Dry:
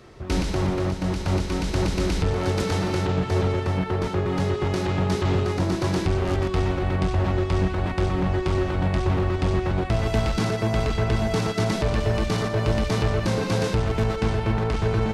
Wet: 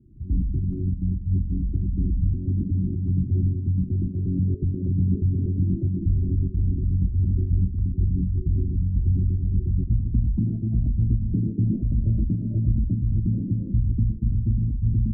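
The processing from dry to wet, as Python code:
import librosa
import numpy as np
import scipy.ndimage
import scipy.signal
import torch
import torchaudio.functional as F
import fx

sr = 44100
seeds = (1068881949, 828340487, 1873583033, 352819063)

p1 = fx.envelope_sharpen(x, sr, power=3.0)
p2 = scipy.signal.sosfilt(scipy.signal.cheby2(4, 50, [820.0, 6900.0], 'bandstop', fs=sr, output='sos'), p1)
p3 = fx.dynamic_eq(p2, sr, hz=250.0, q=7.9, threshold_db=-50.0, ratio=4.0, max_db=8)
p4 = fx.filter_lfo_lowpass(p3, sr, shape='sine', hz=0.15, low_hz=510.0, high_hz=3400.0, q=4.6)
p5 = fx.volume_shaper(p4, sr, bpm=102, per_beat=1, depth_db=-9, release_ms=135.0, shape='slow start')
p6 = p4 + (p5 * 10.0 ** (1.0 / 20.0))
p7 = fx.fixed_phaser(p6, sr, hz=1100.0, stages=4)
p8 = p7 + fx.echo_single(p7, sr, ms=850, db=-22.0, dry=0)
y = p8 * 10.0 ** (-4.5 / 20.0)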